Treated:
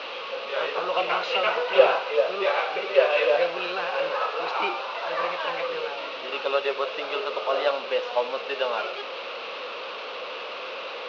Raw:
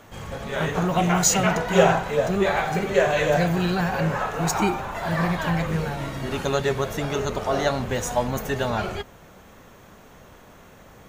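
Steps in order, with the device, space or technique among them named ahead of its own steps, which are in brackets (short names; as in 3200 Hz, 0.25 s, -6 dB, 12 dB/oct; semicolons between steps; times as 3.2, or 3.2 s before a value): digital answering machine (BPF 370–3300 Hz; delta modulation 32 kbps, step -29.5 dBFS; speaker cabinet 460–4400 Hz, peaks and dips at 510 Hz +10 dB, 750 Hz -4 dB, 1200 Hz +5 dB, 1800 Hz -6 dB, 2700 Hz +10 dB, 3900 Hz +4 dB); gain -1.5 dB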